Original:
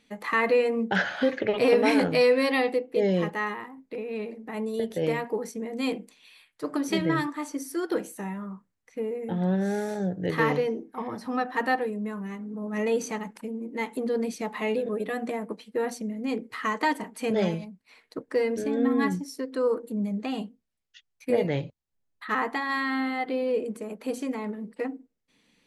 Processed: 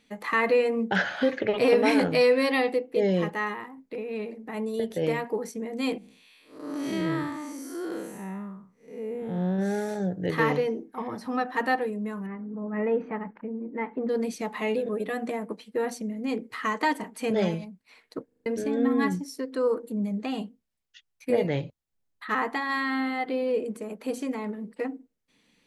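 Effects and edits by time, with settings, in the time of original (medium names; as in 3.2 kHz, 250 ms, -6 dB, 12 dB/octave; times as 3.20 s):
5.98–9.59 s: spectral blur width 200 ms
12.26–14.09 s: low-pass 2 kHz 24 dB/octave
18.26 s: stutter in place 0.04 s, 5 plays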